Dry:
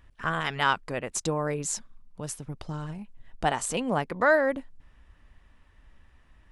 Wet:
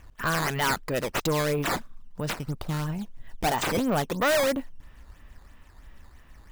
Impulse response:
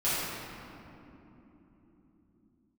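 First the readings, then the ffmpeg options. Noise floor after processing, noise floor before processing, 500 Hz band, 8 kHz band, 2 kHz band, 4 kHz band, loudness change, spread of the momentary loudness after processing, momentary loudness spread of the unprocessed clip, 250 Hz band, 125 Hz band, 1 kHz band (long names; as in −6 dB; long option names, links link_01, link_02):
−52 dBFS, −59 dBFS, +1.0 dB, −1.5 dB, −0.5 dB, +4.0 dB, +1.0 dB, 9 LU, 15 LU, +3.5 dB, +4.5 dB, 0.0 dB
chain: -af "acrusher=samples=9:mix=1:aa=0.000001:lfo=1:lforange=14.4:lforate=3,asoftclip=type=tanh:threshold=-27dB,volume=7dB"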